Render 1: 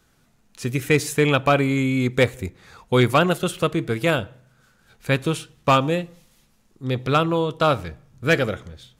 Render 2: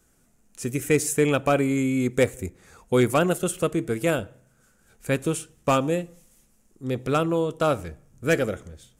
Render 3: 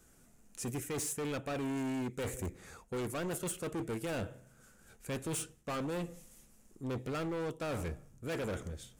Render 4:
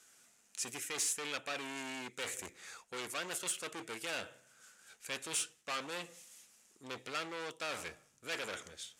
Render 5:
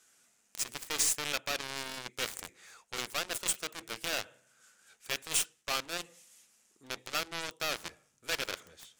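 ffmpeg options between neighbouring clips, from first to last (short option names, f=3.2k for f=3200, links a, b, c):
-af "equalizer=f=125:t=o:w=1:g=-6,equalizer=f=1k:t=o:w=1:g=-6,equalizer=f=2k:t=o:w=1:g=-3,equalizer=f=4k:t=o:w=1:g=-11,equalizer=f=8k:t=o:w=1:g=7"
-af "areverse,acompressor=threshold=-29dB:ratio=6,areverse,asoftclip=type=hard:threshold=-34dB"
-af "bandpass=f=3.9k:t=q:w=0.66:csg=0,volume=7.5dB"
-af "aeval=exprs='0.0631*(cos(1*acos(clip(val(0)/0.0631,-1,1)))-cos(1*PI/2))+0.00447*(cos(6*acos(clip(val(0)/0.0631,-1,1)))-cos(6*PI/2))+0.0126*(cos(7*acos(clip(val(0)/0.0631,-1,1)))-cos(7*PI/2))+0.00251*(cos(8*acos(clip(val(0)/0.0631,-1,1)))-cos(8*PI/2))':c=same,volume=6dB"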